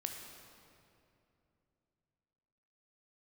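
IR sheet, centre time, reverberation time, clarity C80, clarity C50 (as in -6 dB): 67 ms, 2.8 s, 5.0 dB, 4.0 dB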